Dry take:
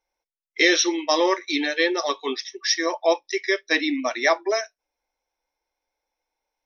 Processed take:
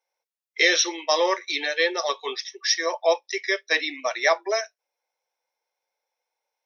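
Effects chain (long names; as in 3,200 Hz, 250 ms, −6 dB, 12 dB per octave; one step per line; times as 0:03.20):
Chebyshev high-pass filter 460 Hz, order 3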